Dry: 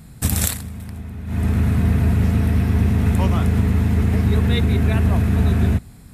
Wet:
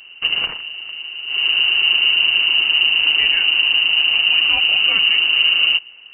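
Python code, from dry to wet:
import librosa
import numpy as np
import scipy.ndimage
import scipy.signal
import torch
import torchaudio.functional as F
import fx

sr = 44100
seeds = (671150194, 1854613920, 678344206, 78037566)

y = fx.freq_invert(x, sr, carrier_hz=2900)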